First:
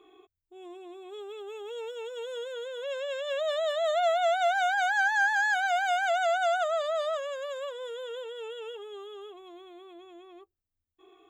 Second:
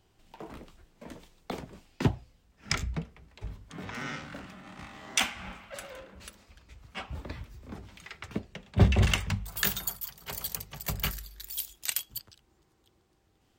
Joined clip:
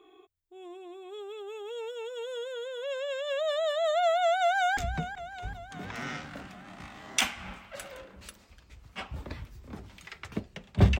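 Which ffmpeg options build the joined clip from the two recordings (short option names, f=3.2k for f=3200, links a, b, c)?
-filter_complex "[0:a]apad=whole_dur=10.99,atrim=end=10.99,atrim=end=4.772[a];[1:a]atrim=start=2.758:end=8.98[b];[a][b]acrossfade=d=0.004:c1=hsin:c2=hsin,asplit=2[c][d];[d]afade=t=in:st=4.4:d=0.01,afade=t=out:st=4.77:d=0.01,aecho=0:1:380|760|1140|1520|1900|2280|2660:0.266073|0.159644|0.0957861|0.0574717|0.034483|0.0206898|0.0124139[e];[c][e]amix=inputs=2:normalize=0"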